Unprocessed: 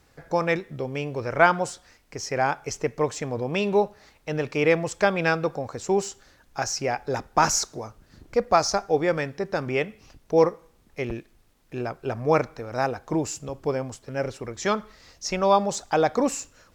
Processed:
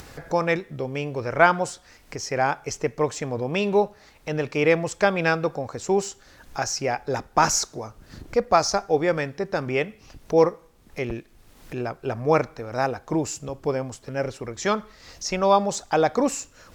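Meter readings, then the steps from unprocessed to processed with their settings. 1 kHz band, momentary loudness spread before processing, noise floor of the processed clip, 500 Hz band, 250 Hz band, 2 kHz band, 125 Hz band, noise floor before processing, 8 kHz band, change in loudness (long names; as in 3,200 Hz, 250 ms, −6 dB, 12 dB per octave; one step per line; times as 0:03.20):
+1.0 dB, 12 LU, −54 dBFS, +1.0 dB, +1.0 dB, +1.0 dB, +1.0 dB, −60 dBFS, +1.0 dB, +1.0 dB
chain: upward compression, threshold −32 dBFS
level +1 dB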